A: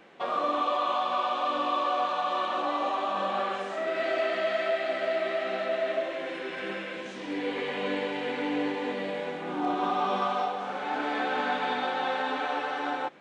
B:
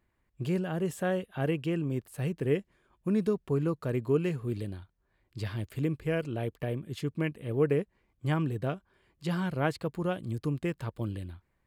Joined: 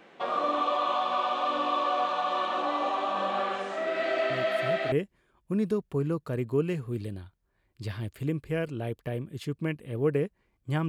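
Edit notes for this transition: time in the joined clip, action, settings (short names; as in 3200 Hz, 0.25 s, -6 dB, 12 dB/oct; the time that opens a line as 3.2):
A
4.3 add B from 1.86 s 0.62 s -7 dB
4.92 switch to B from 2.48 s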